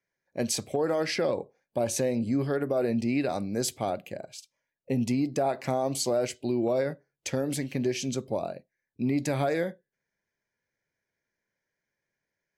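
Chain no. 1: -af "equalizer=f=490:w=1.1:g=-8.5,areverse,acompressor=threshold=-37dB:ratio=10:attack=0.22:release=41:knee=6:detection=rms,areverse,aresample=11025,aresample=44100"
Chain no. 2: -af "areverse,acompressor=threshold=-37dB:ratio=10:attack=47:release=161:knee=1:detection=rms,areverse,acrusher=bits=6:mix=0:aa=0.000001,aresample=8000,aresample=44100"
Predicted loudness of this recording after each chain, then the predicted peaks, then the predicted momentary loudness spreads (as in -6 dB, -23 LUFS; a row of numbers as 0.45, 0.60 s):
-44.5, -39.5 LUFS; -34.0, -24.5 dBFS; 7, 6 LU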